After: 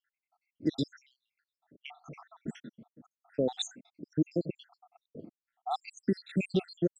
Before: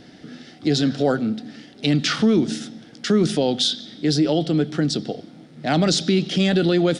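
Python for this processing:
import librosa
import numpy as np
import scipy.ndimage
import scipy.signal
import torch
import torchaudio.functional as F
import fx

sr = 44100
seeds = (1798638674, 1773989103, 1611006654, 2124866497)

y = fx.spec_dropout(x, sr, seeds[0], share_pct=83)
y = fx.env_lowpass(y, sr, base_hz=640.0, full_db=-22.5)
y = y * 10.0 ** (-7.0 / 20.0)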